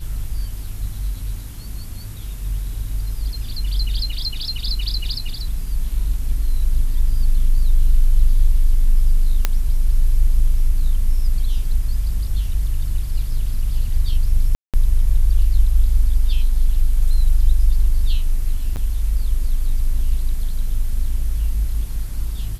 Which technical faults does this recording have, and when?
9.45 pop -3 dBFS
14.55–14.74 gap 0.187 s
18.76–18.77 gap 8.4 ms

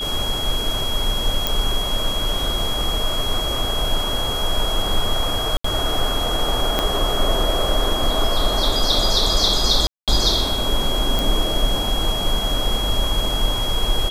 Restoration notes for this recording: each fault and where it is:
tone 3300 Hz -24 dBFS
1.47 pop
5.57–5.64 gap 74 ms
6.79 pop -4 dBFS
9.87–10.08 gap 0.207 s
11.19 pop

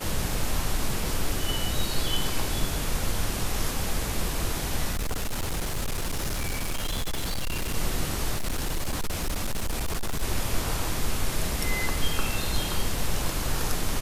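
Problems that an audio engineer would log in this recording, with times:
1.04 gap 3.3 ms
4.92–7.75 clipped -24.5 dBFS
8.33–10.23 clipped -23.5 dBFS

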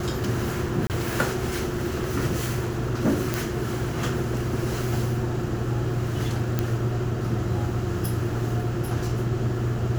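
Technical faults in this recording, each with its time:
0.87–0.9 gap 28 ms
3.34 pop
6.59 pop -10 dBFS

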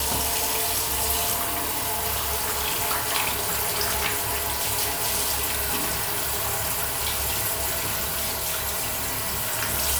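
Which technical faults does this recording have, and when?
8.04–9.44 clipped -22.5 dBFS

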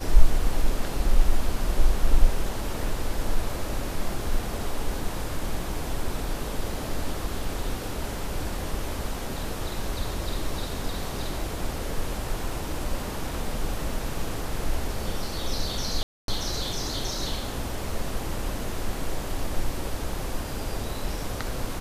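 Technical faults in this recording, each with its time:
16.03–16.28 gap 0.252 s

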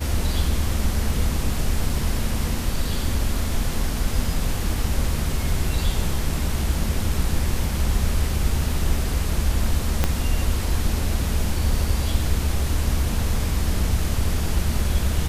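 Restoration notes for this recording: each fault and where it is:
10.04 pop -5 dBFS

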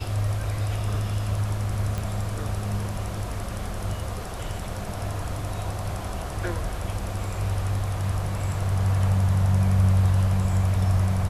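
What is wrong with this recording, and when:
1.98 pop

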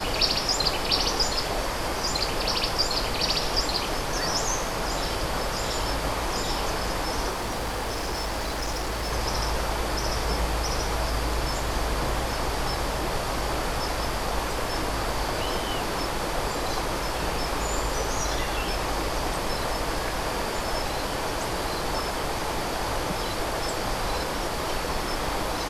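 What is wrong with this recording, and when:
7.3–9.13 clipped -25.5 dBFS

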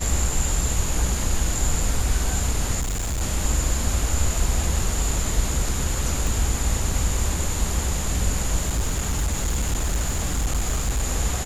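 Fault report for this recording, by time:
2.8–3.22 clipped -22.5 dBFS
6.27 pop
8.61–11.04 clipped -18.5 dBFS

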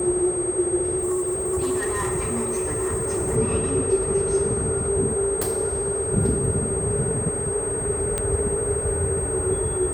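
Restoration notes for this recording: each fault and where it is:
tone 8400 Hz -27 dBFS
0.98–3.37 clipped -21 dBFS
8.18 pop -11 dBFS

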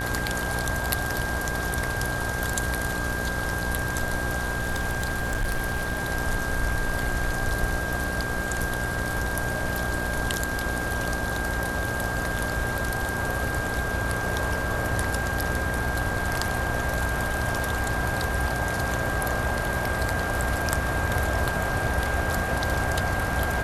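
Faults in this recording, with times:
buzz 60 Hz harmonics 29 -32 dBFS
tone 1600 Hz -30 dBFS
4.58–6.05 clipped -21.5 dBFS

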